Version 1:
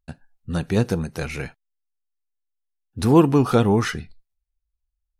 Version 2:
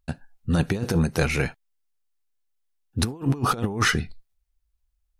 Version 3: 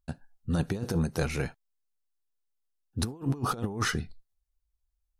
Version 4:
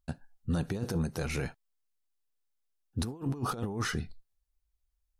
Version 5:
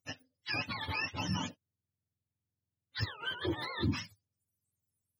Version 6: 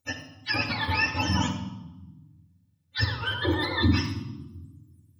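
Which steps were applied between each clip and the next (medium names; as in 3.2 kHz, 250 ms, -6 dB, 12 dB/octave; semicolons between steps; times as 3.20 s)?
compressor with a negative ratio -23 dBFS, ratio -0.5; trim +1 dB
peaking EQ 2.3 kHz -5.5 dB 1 oct; trim -6 dB
peak limiter -23 dBFS, peak gain reduction 7.5 dB
spectrum inverted on a logarithmic axis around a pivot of 650 Hz
reverberation RT60 1.0 s, pre-delay 3 ms, DRR 2.5 dB; trim +6 dB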